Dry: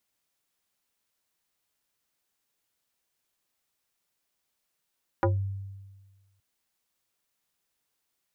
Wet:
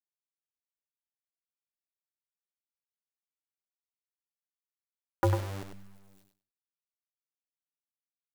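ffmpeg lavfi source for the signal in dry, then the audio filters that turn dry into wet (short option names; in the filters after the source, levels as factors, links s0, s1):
-f lavfi -i "aevalsrc='0.112*pow(10,-3*t/1.42)*sin(2*PI*97.8*t+3.1*pow(10,-3*t/0.2)*sin(2*PI*4.54*97.8*t))':d=1.17:s=44100"
-filter_complex "[0:a]acrusher=bits=7:dc=4:mix=0:aa=0.000001,asplit=2[s0][s1];[s1]aecho=0:1:98|196|294:0.447|0.0804|0.0145[s2];[s0][s2]amix=inputs=2:normalize=0"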